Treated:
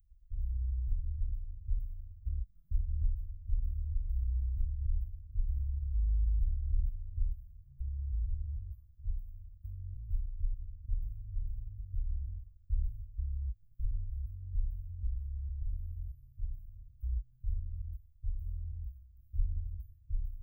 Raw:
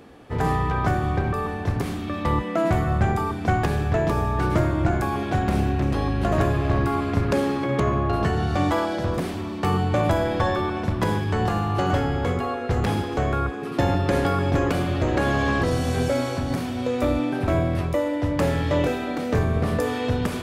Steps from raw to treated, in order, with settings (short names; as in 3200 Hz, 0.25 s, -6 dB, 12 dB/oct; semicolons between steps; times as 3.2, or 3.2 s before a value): inverse Chebyshev band-stop 260–7900 Hz, stop band 80 dB; gain +7.5 dB